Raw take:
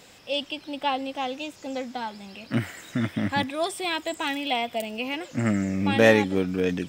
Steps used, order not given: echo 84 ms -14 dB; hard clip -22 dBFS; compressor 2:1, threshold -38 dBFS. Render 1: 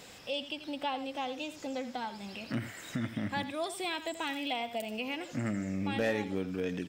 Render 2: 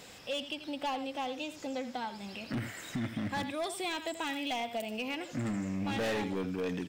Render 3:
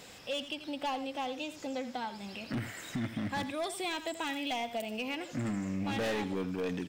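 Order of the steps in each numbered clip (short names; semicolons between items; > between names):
echo > compressor > hard clip; echo > hard clip > compressor; hard clip > echo > compressor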